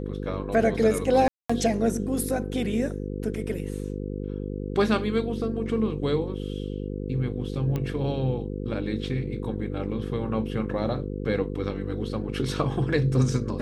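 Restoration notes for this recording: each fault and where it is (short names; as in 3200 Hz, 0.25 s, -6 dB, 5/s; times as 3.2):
buzz 50 Hz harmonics 10 -32 dBFS
1.28–1.5 gap 0.215 s
7.76 pop -17 dBFS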